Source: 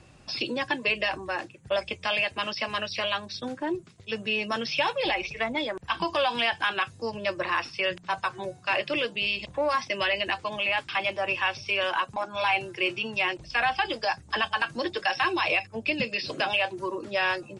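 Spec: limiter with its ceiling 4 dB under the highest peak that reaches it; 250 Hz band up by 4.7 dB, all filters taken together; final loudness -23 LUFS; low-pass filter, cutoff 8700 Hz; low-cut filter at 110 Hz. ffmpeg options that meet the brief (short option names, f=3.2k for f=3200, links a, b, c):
-af "highpass=110,lowpass=8.7k,equalizer=f=250:t=o:g=6.5,volume=5dB,alimiter=limit=-12dB:level=0:latency=1"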